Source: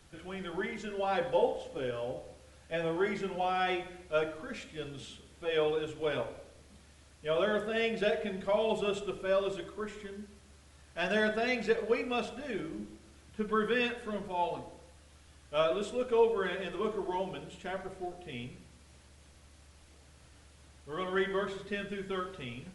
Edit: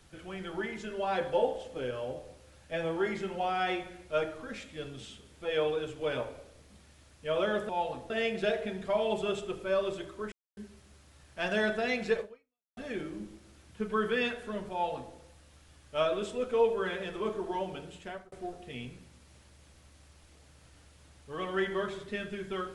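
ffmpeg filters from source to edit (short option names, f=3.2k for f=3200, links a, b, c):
-filter_complex "[0:a]asplit=7[a][b][c][d][e][f][g];[a]atrim=end=7.692[h];[b]atrim=start=14.308:end=14.722[i];[c]atrim=start=7.688:end=9.91,asetpts=PTS-STARTPTS,afade=t=out:st=2.218:d=0.004:c=hsin[j];[d]atrim=start=9.91:end=10.16,asetpts=PTS-STARTPTS,volume=0[k];[e]atrim=start=10.16:end=12.36,asetpts=PTS-STARTPTS,afade=t=in:d=0.004:c=hsin,afade=t=out:st=1.63:d=0.57:c=exp[l];[f]atrim=start=12.36:end=17.91,asetpts=PTS-STARTPTS,afade=t=in:d=0.004:c=hsin,afade=t=out:st=5.12:d=0.43:c=qsin[m];[g]atrim=start=17.91,asetpts=PTS-STARTPTS,afade=t=in:d=0.004:c=hsin[n];[h][i]acrossfade=d=0.004:c1=hsin:c2=hsin[o];[j][k][l][m][n]concat=n=5:v=0:a=1[p];[o][p]acrossfade=d=0.004:c1=hsin:c2=hsin"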